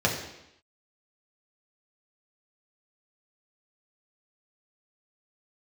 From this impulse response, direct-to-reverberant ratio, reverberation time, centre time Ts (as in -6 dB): -2.5 dB, 0.85 s, 32 ms